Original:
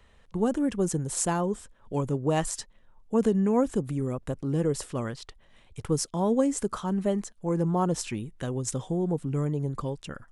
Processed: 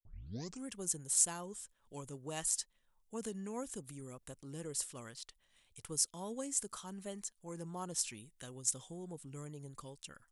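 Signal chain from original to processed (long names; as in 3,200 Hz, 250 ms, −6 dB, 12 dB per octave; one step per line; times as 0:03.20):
turntable start at the beginning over 0.68 s
first-order pre-emphasis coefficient 0.9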